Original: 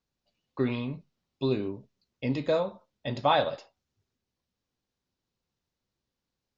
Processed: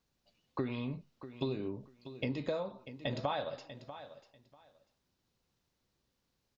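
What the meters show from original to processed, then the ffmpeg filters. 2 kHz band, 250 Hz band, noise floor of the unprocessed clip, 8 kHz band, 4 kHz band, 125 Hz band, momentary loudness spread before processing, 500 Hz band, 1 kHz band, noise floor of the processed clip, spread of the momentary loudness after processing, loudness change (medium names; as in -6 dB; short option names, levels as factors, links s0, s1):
-8.0 dB, -7.0 dB, under -85 dBFS, no reading, -8.5 dB, -6.0 dB, 19 LU, -9.0 dB, -11.5 dB, -82 dBFS, 14 LU, -9.5 dB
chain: -af "acompressor=threshold=0.0126:ratio=6,aecho=1:1:642|1284:0.224|0.0403,volume=1.68"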